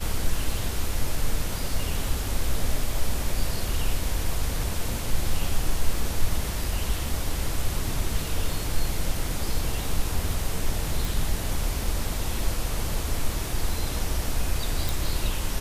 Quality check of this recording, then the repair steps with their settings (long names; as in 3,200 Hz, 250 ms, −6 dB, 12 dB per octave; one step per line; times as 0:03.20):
0:11.05: click
0:14.89: click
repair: click removal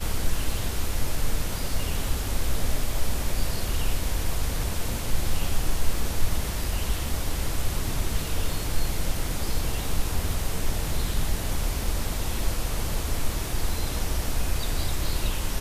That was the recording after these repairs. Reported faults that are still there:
none of them is left